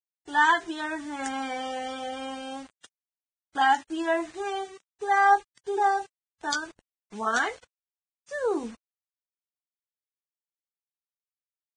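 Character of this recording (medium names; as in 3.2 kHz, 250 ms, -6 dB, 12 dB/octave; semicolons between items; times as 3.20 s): a quantiser's noise floor 8-bit, dither none; Vorbis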